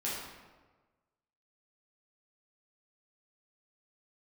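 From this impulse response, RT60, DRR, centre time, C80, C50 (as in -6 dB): 1.3 s, -8.0 dB, 79 ms, 3.0 dB, -0.5 dB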